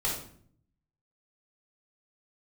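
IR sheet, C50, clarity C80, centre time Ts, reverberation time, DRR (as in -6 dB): 3.0 dB, 8.0 dB, 39 ms, 0.55 s, -5.5 dB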